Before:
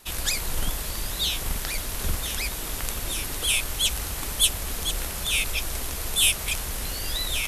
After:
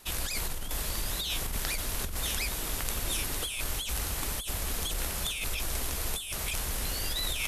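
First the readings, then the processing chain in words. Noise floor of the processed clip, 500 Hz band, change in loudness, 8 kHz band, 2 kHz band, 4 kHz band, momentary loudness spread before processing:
-36 dBFS, -3.0 dB, -6.0 dB, -6.5 dB, -6.5 dB, -8.0 dB, 9 LU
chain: negative-ratio compressor -28 dBFS, ratio -1; gain -3.5 dB

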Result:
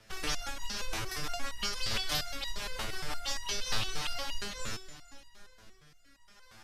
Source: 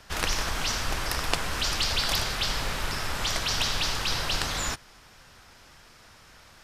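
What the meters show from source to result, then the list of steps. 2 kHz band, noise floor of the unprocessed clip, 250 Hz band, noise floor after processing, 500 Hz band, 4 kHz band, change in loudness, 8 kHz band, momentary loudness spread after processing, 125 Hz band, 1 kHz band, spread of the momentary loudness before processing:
-8.5 dB, -53 dBFS, -8.0 dB, -59 dBFS, -7.5 dB, -8.0 dB, -8.0 dB, -8.0 dB, 6 LU, -10.0 dB, -9.0 dB, 5 LU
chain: split-band echo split 440 Hz, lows 0.529 s, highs 0.221 s, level -16 dB; rotary speaker horn 6 Hz, later 0.8 Hz, at 3.26; stepped resonator 8.6 Hz 110–950 Hz; gain +8 dB

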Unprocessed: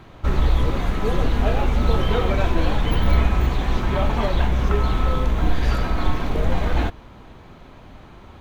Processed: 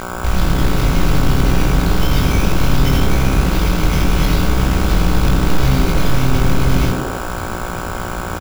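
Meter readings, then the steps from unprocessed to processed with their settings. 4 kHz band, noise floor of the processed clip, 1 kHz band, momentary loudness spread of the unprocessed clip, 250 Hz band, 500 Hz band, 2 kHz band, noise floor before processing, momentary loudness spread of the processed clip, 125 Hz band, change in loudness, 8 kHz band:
+8.5 dB, -24 dBFS, +5.0 dB, 4 LU, +8.5 dB, +3.0 dB, +7.5 dB, -44 dBFS, 8 LU, +6.5 dB, +5.0 dB, +17.5 dB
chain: Chebyshev band-stop 110–2100 Hz, order 5; bell 180 Hz -11.5 dB 0.24 oct; in parallel at +1.5 dB: compressor, threshold -29 dBFS, peak gain reduction 16.5 dB; on the sum: limiter -16 dBFS, peak gain reduction 10 dB; reverse; upward compressor, threshold -29 dBFS; reverse; short-mantissa float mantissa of 2-bit; buzz 60 Hz, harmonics 26, -35 dBFS 0 dB/oct; sample-rate reducer 8400 Hz, jitter 0%; doubler 22 ms -4 dB; frequency-shifting echo 82 ms, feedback 52%, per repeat +130 Hz, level -8 dB; gain +7 dB

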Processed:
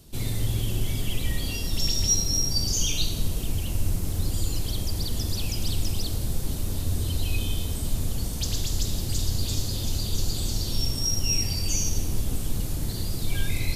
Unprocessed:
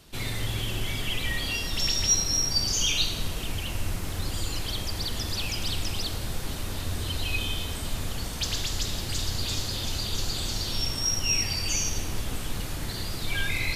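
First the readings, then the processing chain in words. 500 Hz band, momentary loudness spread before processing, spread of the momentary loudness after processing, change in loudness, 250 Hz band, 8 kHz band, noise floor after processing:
0.0 dB, 10 LU, 7 LU, +0.5 dB, +3.5 dB, +0.5 dB, -30 dBFS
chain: bell 1700 Hz -14.5 dB 3 oct; gain +5.5 dB

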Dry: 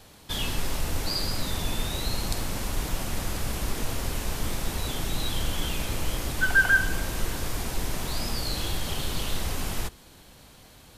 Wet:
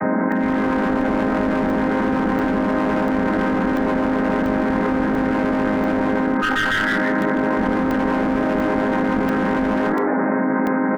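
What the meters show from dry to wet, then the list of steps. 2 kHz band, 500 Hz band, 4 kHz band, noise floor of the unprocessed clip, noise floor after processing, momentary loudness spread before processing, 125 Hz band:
+4.5 dB, +18.0 dB, -4.0 dB, -52 dBFS, -20 dBFS, 9 LU, +3.0 dB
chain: chord vocoder major triad, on G#3; on a send: frequency-shifting echo 0.162 s, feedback 37%, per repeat +98 Hz, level -12 dB; on the sum: AGC gain up to 16 dB; steep low-pass 2000 Hz 72 dB/oct; bell 450 Hz -5.5 dB 1.6 oct; doubler 27 ms -4 dB; one-sided clip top -24.5 dBFS; echo 0.157 s -24 dB; crackling interface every 0.69 s, samples 64, zero, from 0.32; fast leveller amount 100%; gain -4.5 dB

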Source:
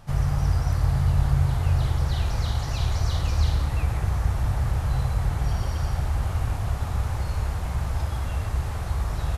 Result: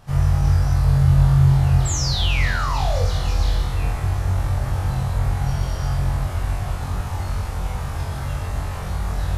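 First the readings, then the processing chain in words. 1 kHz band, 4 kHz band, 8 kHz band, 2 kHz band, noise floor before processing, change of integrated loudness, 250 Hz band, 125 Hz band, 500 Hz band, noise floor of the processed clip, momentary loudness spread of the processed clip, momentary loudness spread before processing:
+5.0 dB, +8.0 dB, +9.0 dB, +7.5 dB, -30 dBFS, +4.5 dB, +6.5 dB, +4.5 dB, +5.5 dB, -28 dBFS, 12 LU, 6 LU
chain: painted sound fall, 1.85–3.04, 450–7900 Hz -30 dBFS; flutter echo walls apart 3.8 m, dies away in 0.51 s

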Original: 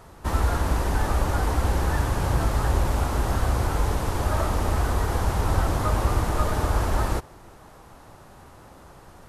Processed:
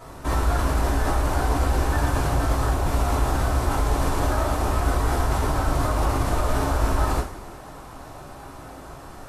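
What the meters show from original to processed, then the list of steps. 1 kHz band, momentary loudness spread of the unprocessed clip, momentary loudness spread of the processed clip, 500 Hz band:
+2.5 dB, 2 LU, 18 LU, +2.0 dB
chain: limiter -21.5 dBFS, peak gain reduction 11.5 dB; two-slope reverb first 0.36 s, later 1.8 s, DRR -6.5 dB

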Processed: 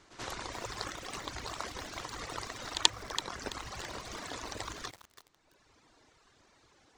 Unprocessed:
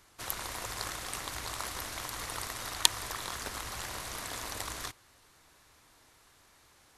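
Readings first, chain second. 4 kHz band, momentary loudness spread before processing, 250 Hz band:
-0.5 dB, 11 LU, +2.5 dB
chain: reverb removal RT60 1.6 s; LPF 7200 Hz 24 dB/oct; bell 320 Hz +6 dB 2.1 oct; pre-echo 84 ms -14 dB; lo-fi delay 0.332 s, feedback 35%, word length 7-bit, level -11 dB

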